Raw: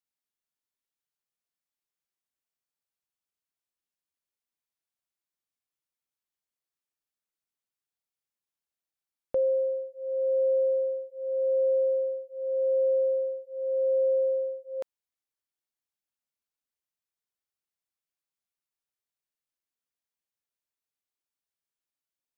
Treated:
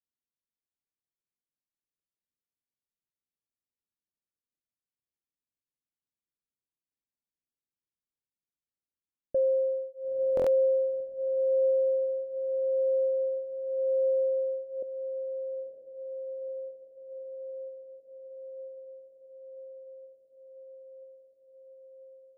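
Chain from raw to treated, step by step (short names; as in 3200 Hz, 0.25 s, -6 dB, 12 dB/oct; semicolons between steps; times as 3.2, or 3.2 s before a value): elliptic low-pass 590 Hz, stop band 40 dB; low-pass opened by the level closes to 410 Hz, open at -22.5 dBFS; on a send: diffused feedback echo 0.954 s, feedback 73%, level -8 dB; on the sum: stuck buffer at 10.35, samples 1024, times 4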